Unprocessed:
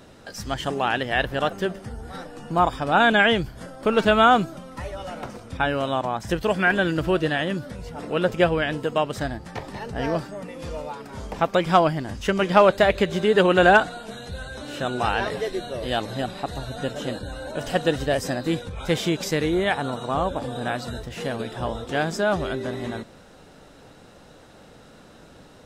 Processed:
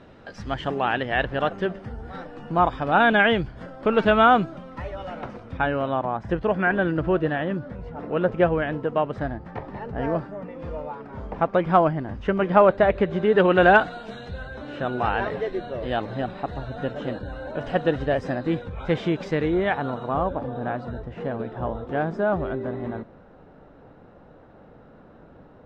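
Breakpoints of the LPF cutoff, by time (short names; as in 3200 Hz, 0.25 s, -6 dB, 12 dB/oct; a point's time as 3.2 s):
5.28 s 2700 Hz
6.1 s 1600 Hz
13.05 s 1600 Hz
14.11 s 3800 Hz
14.5 s 2100 Hz
19.89 s 2100 Hz
20.51 s 1300 Hz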